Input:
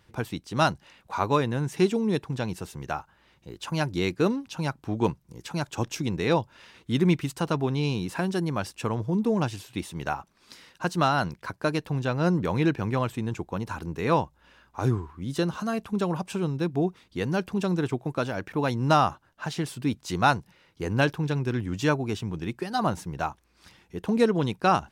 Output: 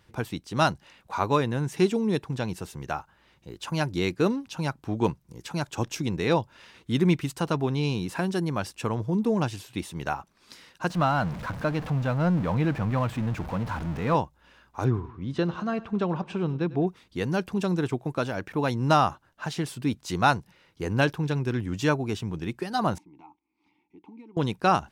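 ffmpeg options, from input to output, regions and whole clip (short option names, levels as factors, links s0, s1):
-filter_complex "[0:a]asettb=1/sr,asplit=3[s0][s1][s2];[s0]atrim=end=10.904[s3];[s1]atrim=start=10.9:end=14.15,asetpts=PTS-STARTPTS,afade=t=in:d=0.004:c=qsin,afade=t=out:st=3.246:d=0.004:c=qsin,aeval=exprs='val(0)+0.5*0.0355*sgn(val(0))':c=same,lowpass=f=1400:p=1,equalizer=f=380:w=3.6:g=-12[s4];[s2]atrim=start=14.146[s5];[s3][s4]acrossfade=d=0.004:c1=hsin:c2=qsin[s6];[s6][s5]acrossfade=d=0.004:c1=qsin:c2=hsin,asettb=1/sr,asplit=3[s7][s8][s9];[s7]atrim=end=14.844[s10];[s8]atrim=start=14.84:end=16.87,asetpts=PTS-STARTPTS,afade=t=in:d=0.004:c=qsin,afade=t=out:st=2.026:d=0.004:c=qsin,lowpass=3300,aecho=1:1:99|198|297|396:0.112|0.0539|0.0259|0.0124,atrim=end_sample=89523[s11];[s9]atrim=start=16.866[s12];[s10][s11]acrossfade=d=0.004:c1=hsin:c2=qsin[s13];[s13][s12]acrossfade=d=0.004:c1=qsin:c2=hsin,asettb=1/sr,asplit=3[s14][s15][s16];[s14]atrim=end=22.984[s17];[s15]atrim=start=22.98:end=24.37,asetpts=PTS-STARTPTS,afade=t=in:d=0.004:c=qsin,afade=t=out:st=1.386:d=0.004:c=qsin,acompressor=threshold=0.0178:ratio=2.5:attack=3.2:release=140:knee=1:detection=peak,asplit=3[s18][s19][s20];[s18]bandpass=f=300:t=q:w=8,volume=1[s21];[s19]bandpass=f=870:t=q:w=8,volume=0.501[s22];[s20]bandpass=f=2240:t=q:w=8,volume=0.355[s23];[s21][s22][s23]amix=inputs=3:normalize=0[s24];[s16]atrim=start=24.366[s25];[s17][s24]acrossfade=d=0.004:c1=hsin:c2=qsin[s26];[s26][s25]acrossfade=d=0.004:c1=qsin:c2=hsin"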